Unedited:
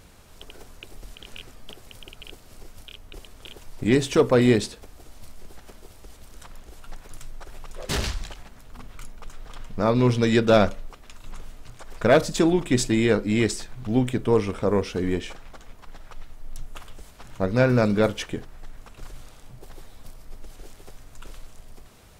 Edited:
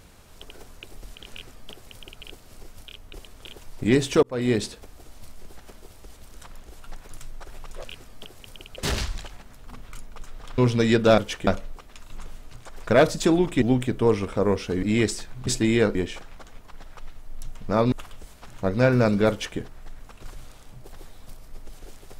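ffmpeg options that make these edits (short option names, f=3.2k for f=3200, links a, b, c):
-filter_complex "[0:a]asplit=13[a][b][c][d][e][f][g][h][i][j][k][l][m];[a]atrim=end=4.23,asetpts=PTS-STARTPTS,afade=t=out:st=4.226:d=0.004:c=hsin[n];[b]atrim=start=4.23:end=7.842,asetpts=PTS-STARTPTS,afade=t=in:d=0.45[o];[c]atrim=start=1.308:end=2.252[p];[d]atrim=start=7.838:end=9.642[q];[e]atrim=start=10.008:end=10.612[r];[f]atrim=start=18.068:end=18.362[s];[g]atrim=start=10.608:end=12.762[t];[h]atrim=start=13.878:end=15.092[u];[i]atrim=start=13.238:end=13.882[v];[j]atrim=start=12.758:end=13.242[w];[k]atrim=start=15.088:end=16.692[x];[l]atrim=start=9.638:end=10.012[y];[m]atrim=start=16.688[z];[n][o]concat=n=2:v=0:a=1[aa];[aa][p]acrossfade=d=0.004:c1=hsin:c2=hsin[ab];[ab][q]acrossfade=d=0.004:c1=hsin:c2=hsin[ac];[ac][r]acrossfade=d=0.004:c1=hsin:c2=hsin[ad];[ad][s]acrossfade=d=0.004:c1=hsin:c2=hsin[ae];[ae][t]acrossfade=d=0.004:c1=hsin:c2=hsin[af];[af][u]acrossfade=d=0.004:c1=hsin:c2=hsin[ag];[ag][v]acrossfade=d=0.004:c1=hsin:c2=hsin[ah];[ah][w]acrossfade=d=0.004:c1=hsin:c2=hsin[ai];[ai][x]acrossfade=d=0.004:c1=hsin:c2=hsin[aj];[aj][y]acrossfade=d=0.004:c1=hsin:c2=hsin[ak];[ak][z]acrossfade=d=0.004:c1=hsin:c2=hsin"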